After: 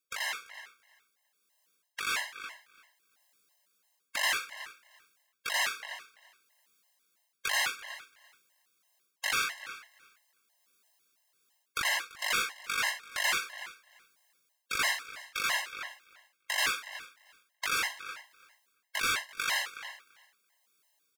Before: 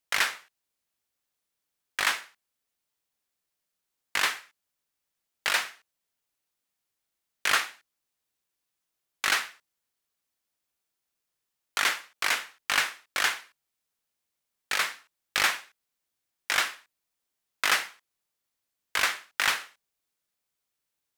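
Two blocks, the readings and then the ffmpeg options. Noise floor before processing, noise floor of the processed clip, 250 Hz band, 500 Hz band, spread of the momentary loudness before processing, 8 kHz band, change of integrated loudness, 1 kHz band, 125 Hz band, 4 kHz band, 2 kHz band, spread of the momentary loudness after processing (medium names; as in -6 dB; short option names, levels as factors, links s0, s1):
-84 dBFS, -79 dBFS, -4.0 dB, -4.0 dB, 12 LU, -2.5 dB, -4.5 dB, -4.0 dB, no reading, -3.0 dB, -3.5 dB, 16 LU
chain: -filter_complex "[0:a]highpass=f=400:p=1,asplit=2[s0][s1];[s1]adelay=370,highpass=300,lowpass=3400,asoftclip=type=hard:threshold=0.126,volume=0.0398[s2];[s0][s2]amix=inputs=2:normalize=0,areverse,acompressor=threshold=0.0158:ratio=16,areverse,tremolo=f=1.2:d=0.34,aeval=exprs='0.0531*sin(PI/2*2.51*val(0)/0.0531)':c=same,asplit=2[s3][s4];[s4]aecho=0:1:338|676:0.106|0.018[s5];[s3][s5]amix=inputs=2:normalize=0,dynaudnorm=f=320:g=11:m=1.68,afftfilt=real='re*gt(sin(2*PI*3*pts/sr)*(1-2*mod(floor(b*sr/1024/540),2)),0)':imag='im*gt(sin(2*PI*3*pts/sr)*(1-2*mod(floor(b*sr/1024/540),2)),0)':win_size=1024:overlap=0.75"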